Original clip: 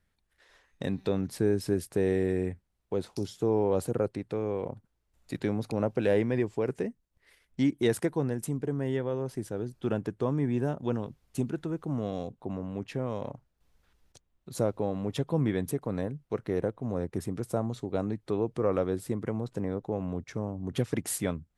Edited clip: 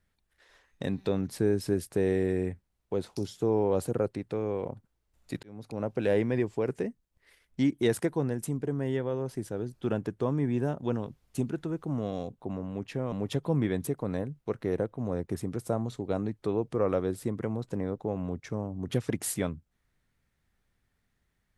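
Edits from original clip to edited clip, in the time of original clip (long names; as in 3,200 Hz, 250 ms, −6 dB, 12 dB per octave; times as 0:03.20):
0:05.43–0:06.36: fade in equal-power
0:13.12–0:14.96: remove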